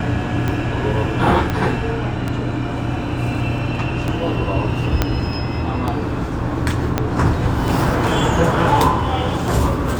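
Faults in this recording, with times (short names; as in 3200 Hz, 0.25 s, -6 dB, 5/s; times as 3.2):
tick 33 1/3 rpm -9 dBFS
1.5 pop -8 dBFS
5.02 pop -1 dBFS
6.98 pop -3 dBFS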